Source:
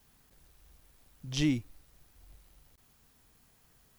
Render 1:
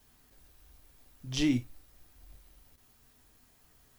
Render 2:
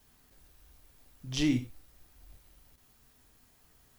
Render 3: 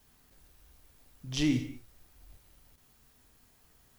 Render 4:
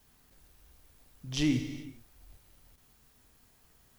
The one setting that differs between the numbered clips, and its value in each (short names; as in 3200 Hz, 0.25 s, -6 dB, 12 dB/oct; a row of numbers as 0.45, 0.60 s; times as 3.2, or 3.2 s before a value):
non-linear reverb, gate: 80, 150, 270, 460 ms